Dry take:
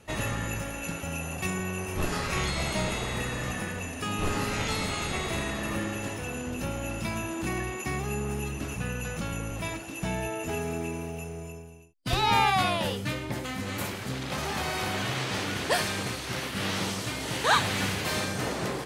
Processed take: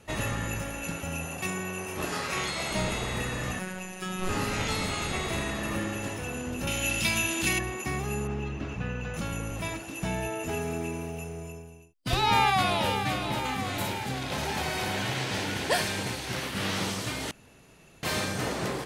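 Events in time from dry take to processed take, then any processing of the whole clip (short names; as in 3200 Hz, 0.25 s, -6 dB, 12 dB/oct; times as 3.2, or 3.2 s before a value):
1.25–2.7 HPF 150 Hz -> 340 Hz 6 dB/oct
3.59–4.29 robotiser 185 Hz
6.67–7.59 EQ curve 1200 Hz 0 dB, 3100 Hz +14 dB, 6100 Hz +11 dB
8.27–9.14 air absorption 170 m
12.15–12.87 echo throw 0.53 s, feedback 70%, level -8 dB
13.7–16.34 notch 1200 Hz, Q 7.4
17.31–18.03 room tone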